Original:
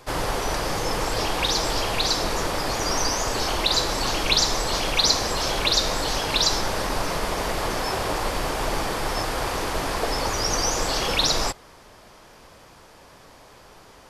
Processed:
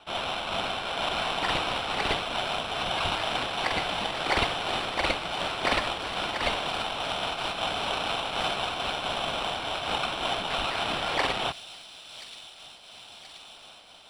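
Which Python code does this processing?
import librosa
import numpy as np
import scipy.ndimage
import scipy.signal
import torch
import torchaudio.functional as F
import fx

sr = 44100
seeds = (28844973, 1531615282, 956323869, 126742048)

p1 = scipy.signal.sosfilt(scipy.signal.butter(2, 310.0, 'highpass', fs=sr, output='sos'), x)
p2 = fx.peak_eq(p1, sr, hz=1200.0, db=11.5, octaves=0.38)
p3 = p2 * np.sin(2.0 * np.pi * 1900.0 * np.arange(len(p2)) / sr)
p4 = fx.sample_hold(p3, sr, seeds[0], rate_hz=6600.0, jitter_pct=0)
p5 = fx.air_absorb(p4, sr, metres=110.0)
p6 = p5 + fx.echo_wet_highpass(p5, sr, ms=1029, feedback_pct=72, hz=4900.0, wet_db=-7, dry=0)
p7 = fx.am_noise(p6, sr, seeds[1], hz=5.7, depth_pct=60)
y = F.gain(torch.from_numpy(p7), 2.0).numpy()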